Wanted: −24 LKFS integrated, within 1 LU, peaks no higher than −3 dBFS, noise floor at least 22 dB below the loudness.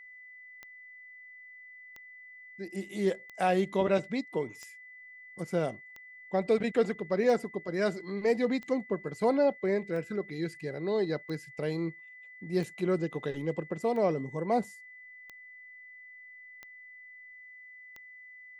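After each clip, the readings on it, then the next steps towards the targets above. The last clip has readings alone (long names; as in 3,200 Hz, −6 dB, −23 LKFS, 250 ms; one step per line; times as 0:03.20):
number of clicks 14; interfering tone 2,000 Hz; level of the tone −48 dBFS; integrated loudness −31.0 LKFS; sample peak −14.5 dBFS; target loudness −24.0 LKFS
→ click removal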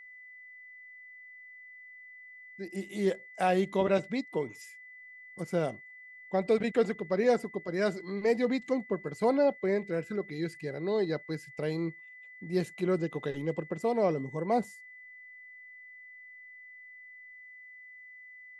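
number of clicks 0; interfering tone 2,000 Hz; level of the tone −48 dBFS
→ notch filter 2,000 Hz, Q 30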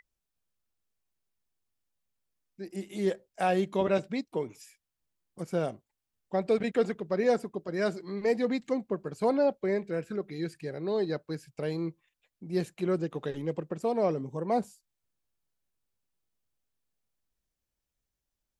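interfering tone none found; integrated loudness −31.0 LKFS; sample peak −14.5 dBFS; target loudness −24.0 LKFS
→ level +7 dB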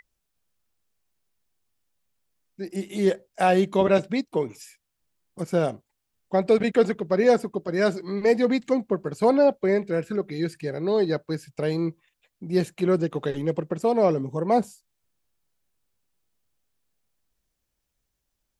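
integrated loudness −24.0 LKFS; sample peak −7.5 dBFS; background noise floor −79 dBFS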